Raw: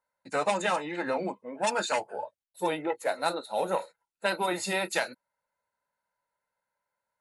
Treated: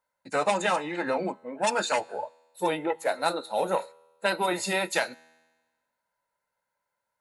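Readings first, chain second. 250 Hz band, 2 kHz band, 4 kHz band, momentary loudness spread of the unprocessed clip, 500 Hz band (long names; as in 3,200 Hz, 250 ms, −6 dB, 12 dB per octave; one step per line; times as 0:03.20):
+2.0 dB, +2.0 dB, +2.0 dB, 9 LU, +2.0 dB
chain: tuned comb filter 81 Hz, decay 1.3 s, harmonics all, mix 30%
level +5 dB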